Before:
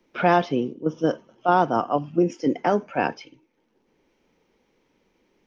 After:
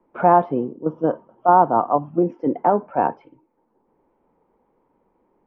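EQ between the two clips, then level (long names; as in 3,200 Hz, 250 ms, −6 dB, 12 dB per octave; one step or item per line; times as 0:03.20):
low-pass with resonance 960 Hz, resonance Q 2.3
0.0 dB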